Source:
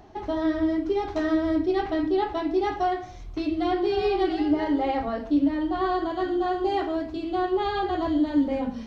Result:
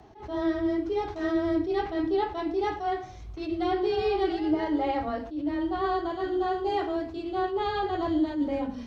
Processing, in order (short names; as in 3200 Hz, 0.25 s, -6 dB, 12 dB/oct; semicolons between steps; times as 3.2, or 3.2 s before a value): frequency shift +13 Hz; attack slew limiter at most 130 dB/s; gain -2 dB